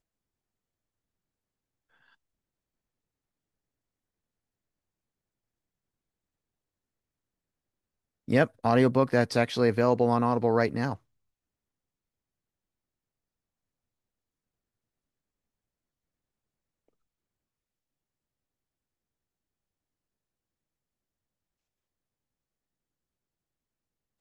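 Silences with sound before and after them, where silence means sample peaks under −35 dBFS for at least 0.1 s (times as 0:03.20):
0:08.47–0:08.64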